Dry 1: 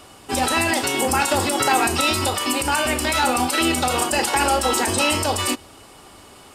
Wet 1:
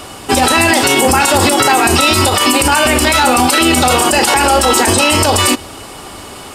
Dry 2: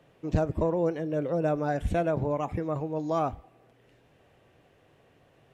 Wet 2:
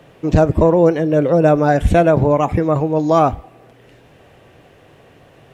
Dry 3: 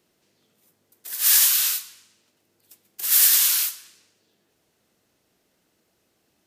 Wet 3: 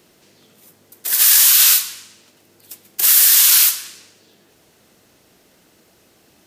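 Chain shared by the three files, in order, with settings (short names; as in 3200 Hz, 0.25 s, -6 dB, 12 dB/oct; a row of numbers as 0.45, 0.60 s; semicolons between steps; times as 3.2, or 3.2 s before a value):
limiter -16 dBFS; normalise peaks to -1.5 dBFS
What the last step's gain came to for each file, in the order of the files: +14.5, +14.5, +14.5 dB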